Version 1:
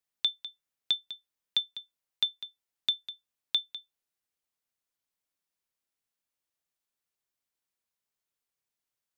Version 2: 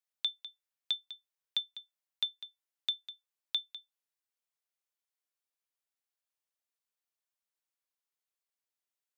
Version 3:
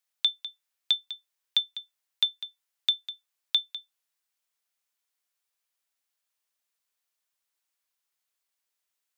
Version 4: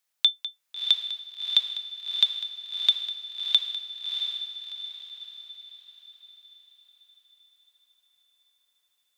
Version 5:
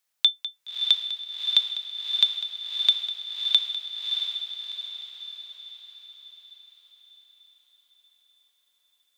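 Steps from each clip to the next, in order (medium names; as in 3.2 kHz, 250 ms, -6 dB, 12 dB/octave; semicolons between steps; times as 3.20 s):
high-pass 450 Hz; trim -5 dB
bass shelf 490 Hz -11 dB; trim +8.5 dB
echo that smears into a reverb 674 ms, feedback 44%, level -4 dB; trim +4 dB
echo that smears into a reverb 569 ms, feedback 49%, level -9 dB; trim +1 dB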